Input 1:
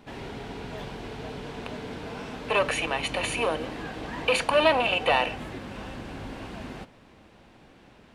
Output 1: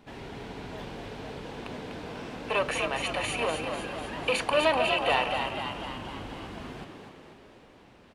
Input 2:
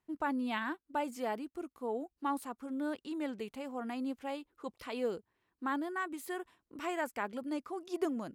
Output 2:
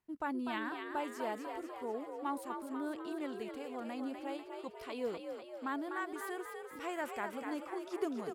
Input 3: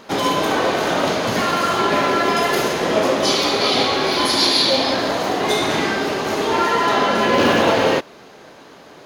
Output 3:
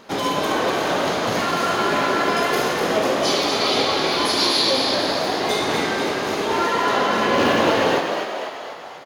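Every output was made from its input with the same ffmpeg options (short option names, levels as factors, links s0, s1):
-filter_complex "[0:a]asplit=9[s0][s1][s2][s3][s4][s5][s6][s7][s8];[s1]adelay=247,afreqshift=54,volume=0.501[s9];[s2]adelay=494,afreqshift=108,volume=0.295[s10];[s3]adelay=741,afreqshift=162,volume=0.174[s11];[s4]adelay=988,afreqshift=216,volume=0.104[s12];[s5]adelay=1235,afreqshift=270,volume=0.061[s13];[s6]adelay=1482,afreqshift=324,volume=0.0359[s14];[s7]adelay=1729,afreqshift=378,volume=0.0211[s15];[s8]adelay=1976,afreqshift=432,volume=0.0124[s16];[s0][s9][s10][s11][s12][s13][s14][s15][s16]amix=inputs=9:normalize=0,volume=0.668"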